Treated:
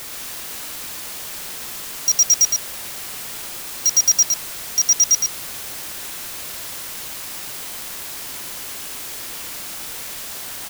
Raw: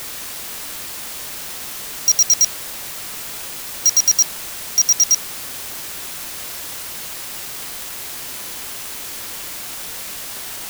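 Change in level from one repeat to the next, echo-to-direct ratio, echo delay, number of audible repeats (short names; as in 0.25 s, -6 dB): no steady repeat, -3.0 dB, 0.114 s, 1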